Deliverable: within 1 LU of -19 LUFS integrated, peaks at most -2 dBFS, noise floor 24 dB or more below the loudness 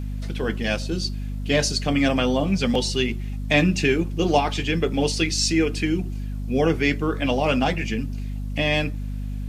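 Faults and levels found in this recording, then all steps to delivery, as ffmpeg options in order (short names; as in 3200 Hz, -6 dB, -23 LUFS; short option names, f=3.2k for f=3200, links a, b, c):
hum 50 Hz; harmonics up to 250 Hz; hum level -26 dBFS; loudness -23.0 LUFS; peak -4.0 dBFS; loudness target -19.0 LUFS
-> -af "bandreject=f=50:t=h:w=4,bandreject=f=100:t=h:w=4,bandreject=f=150:t=h:w=4,bandreject=f=200:t=h:w=4,bandreject=f=250:t=h:w=4"
-af "volume=4dB,alimiter=limit=-2dB:level=0:latency=1"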